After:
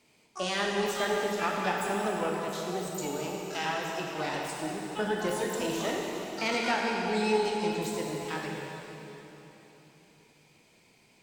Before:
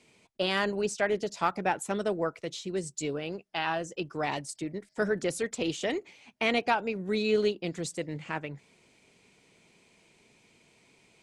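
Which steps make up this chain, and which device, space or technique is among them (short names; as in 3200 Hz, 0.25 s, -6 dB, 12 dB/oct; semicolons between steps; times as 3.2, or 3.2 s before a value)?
shimmer-style reverb (harmoniser +12 st -7 dB; reverb RT60 3.6 s, pre-delay 18 ms, DRR -1.5 dB); gain -4.5 dB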